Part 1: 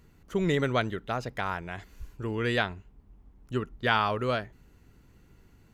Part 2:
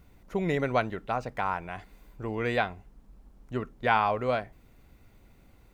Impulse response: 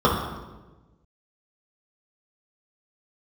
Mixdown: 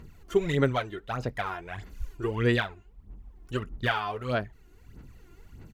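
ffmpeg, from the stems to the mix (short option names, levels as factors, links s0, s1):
-filter_complex "[0:a]aphaser=in_gain=1:out_gain=1:delay=2.9:decay=0.67:speed=1.6:type=sinusoidal,volume=1.26[s0];[1:a]adelay=20,volume=0.133,asplit=2[s1][s2];[s2]apad=whole_len=252809[s3];[s0][s3]sidechaincompress=threshold=0.00447:ratio=3:attack=8.6:release=1030[s4];[s4][s1]amix=inputs=2:normalize=0"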